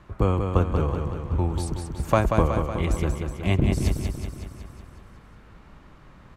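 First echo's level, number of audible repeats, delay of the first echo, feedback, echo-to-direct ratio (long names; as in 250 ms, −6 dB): −5.5 dB, 7, 185 ms, 60%, −3.5 dB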